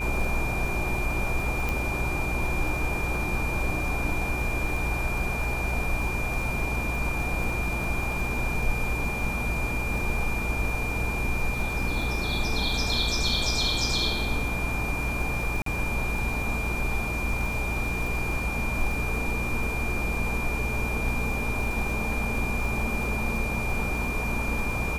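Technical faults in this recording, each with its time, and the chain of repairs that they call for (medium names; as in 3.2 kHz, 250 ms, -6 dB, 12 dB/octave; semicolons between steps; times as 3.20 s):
buzz 60 Hz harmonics 31 -32 dBFS
crackle 25 per s -32 dBFS
whine 2.4 kHz -31 dBFS
1.69 s: pop
15.62–15.66 s: dropout 43 ms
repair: de-click; de-hum 60 Hz, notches 31; band-stop 2.4 kHz, Q 30; interpolate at 15.62 s, 43 ms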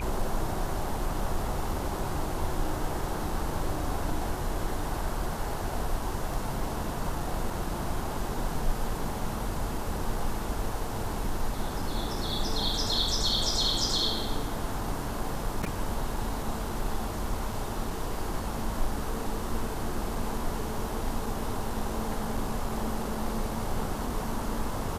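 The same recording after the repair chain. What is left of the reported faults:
1.69 s: pop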